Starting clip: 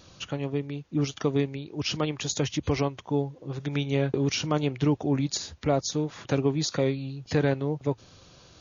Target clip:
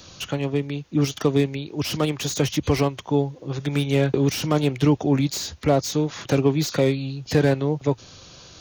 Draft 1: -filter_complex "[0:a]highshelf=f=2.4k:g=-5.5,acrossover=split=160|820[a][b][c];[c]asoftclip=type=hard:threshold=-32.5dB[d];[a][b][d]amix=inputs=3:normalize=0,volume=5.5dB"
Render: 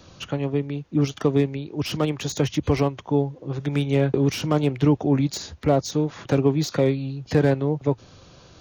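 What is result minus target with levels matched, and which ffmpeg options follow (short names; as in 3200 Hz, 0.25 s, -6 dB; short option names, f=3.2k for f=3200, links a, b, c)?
4000 Hz band -3.5 dB
-filter_complex "[0:a]highshelf=f=2.4k:g=6,acrossover=split=160|820[a][b][c];[c]asoftclip=type=hard:threshold=-32.5dB[d];[a][b][d]amix=inputs=3:normalize=0,volume=5.5dB"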